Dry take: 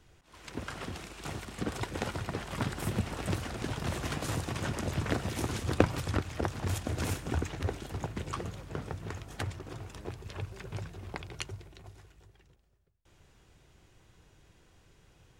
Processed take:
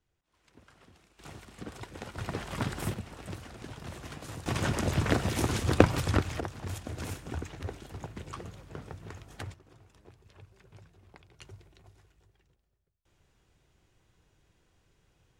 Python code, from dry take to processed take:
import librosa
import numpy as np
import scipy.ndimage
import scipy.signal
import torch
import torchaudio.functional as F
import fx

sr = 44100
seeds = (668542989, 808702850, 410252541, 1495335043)

y = fx.gain(x, sr, db=fx.steps((0.0, -19.0), (1.19, -8.0), (2.18, 0.5), (2.94, -8.5), (4.46, 4.5), (6.4, -5.0), (9.54, -15.0), (11.42, -7.0)))